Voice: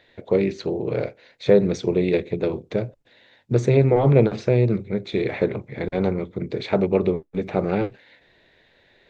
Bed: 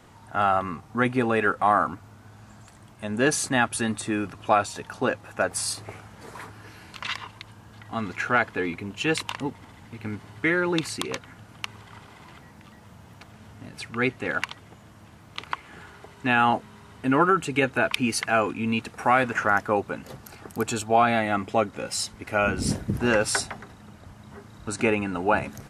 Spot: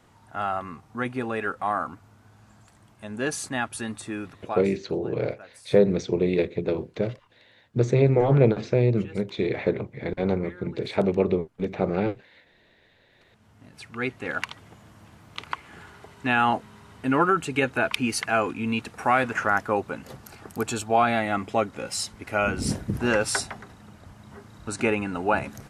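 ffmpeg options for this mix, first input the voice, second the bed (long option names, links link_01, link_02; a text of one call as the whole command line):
ffmpeg -i stem1.wav -i stem2.wav -filter_complex "[0:a]adelay=4250,volume=-2.5dB[link_01];[1:a]volume=15.5dB,afade=type=out:start_time=4.26:duration=0.52:silence=0.149624,afade=type=in:start_time=13.1:duration=1.47:silence=0.0841395[link_02];[link_01][link_02]amix=inputs=2:normalize=0" out.wav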